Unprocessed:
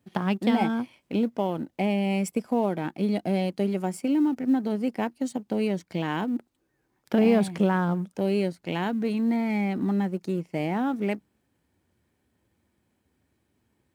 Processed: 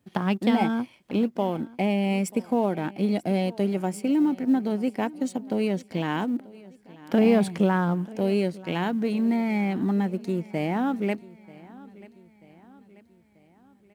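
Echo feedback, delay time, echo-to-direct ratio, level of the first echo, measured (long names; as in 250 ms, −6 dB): 50%, 937 ms, −20.0 dB, −21.0 dB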